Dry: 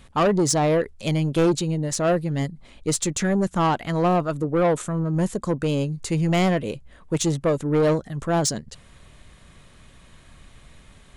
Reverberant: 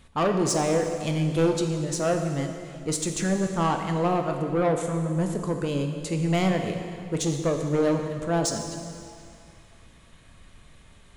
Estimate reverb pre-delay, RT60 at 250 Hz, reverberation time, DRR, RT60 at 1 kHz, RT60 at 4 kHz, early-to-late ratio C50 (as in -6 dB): 6 ms, 2.4 s, 2.5 s, 4.0 dB, 2.4 s, 2.2 s, 5.5 dB